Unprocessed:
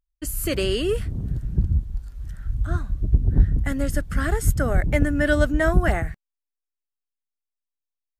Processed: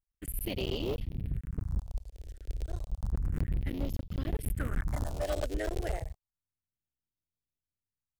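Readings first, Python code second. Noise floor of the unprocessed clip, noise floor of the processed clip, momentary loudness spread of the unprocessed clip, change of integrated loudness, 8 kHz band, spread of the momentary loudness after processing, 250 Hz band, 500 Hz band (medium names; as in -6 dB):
under -85 dBFS, under -85 dBFS, 11 LU, -12.5 dB, -13.0 dB, 9 LU, -13.5 dB, -12.5 dB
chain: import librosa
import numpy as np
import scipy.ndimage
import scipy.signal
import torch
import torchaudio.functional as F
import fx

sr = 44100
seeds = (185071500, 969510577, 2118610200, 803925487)

y = fx.cycle_switch(x, sr, every=3, mode='muted')
y = fx.phaser_stages(y, sr, stages=4, low_hz=180.0, high_hz=1600.0, hz=0.31, feedback_pct=30)
y = np.clip(10.0 ** (17.5 / 20.0) * y, -1.0, 1.0) / 10.0 ** (17.5 / 20.0)
y = F.gain(torch.from_numpy(y), -8.0).numpy()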